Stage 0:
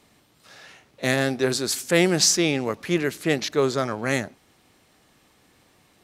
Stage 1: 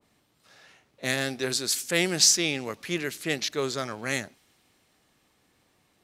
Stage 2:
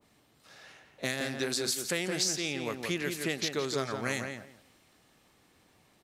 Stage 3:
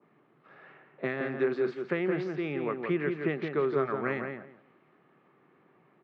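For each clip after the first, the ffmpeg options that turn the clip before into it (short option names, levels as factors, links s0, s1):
-af "adynamicequalizer=threshold=0.0112:dfrequency=1700:dqfactor=0.7:tfrequency=1700:tqfactor=0.7:attack=5:release=100:ratio=0.375:range=4:mode=boostabove:tftype=highshelf,volume=0.398"
-filter_complex "[0:a]acompressor=threshold=0.0316:ratio=6,asplit=2[s0][s1];[s1]adelay=170,lowpass=f=2200:p=1,volume=0.596,asplit=2[s2][s3];[s3]adelay=170,lowpass=f=2200:p=1,volume=0.2,asplit=2[s4][s5];[s5]adelay=170,lowpass=f=2200:p=1,volume=0.2[s6];[s2][s4][s6]amix=inputs=3:normalize=0[s7];[s0][s7]amix=inputs=2:normalize=0,volume=1.19"
-af "highpass=f=140:w=0.5412,highpass=f=140:w=1.3066,equalizer=f=150:t=q:w=4:g=7,equalizer=f=380:t=q:w=4:g=9,equalizer=f=1200:t=q:w=4:g=6,lowpass=f=2200:w=0.5412,lowpass=f=2200:w=1.3066"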